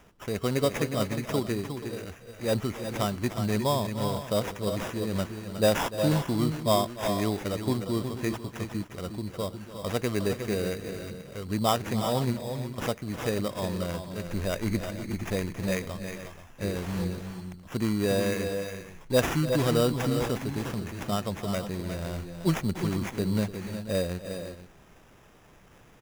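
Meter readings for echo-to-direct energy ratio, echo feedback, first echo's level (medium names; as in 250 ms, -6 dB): -6.5 dB, no regular repeats, -15.5 dB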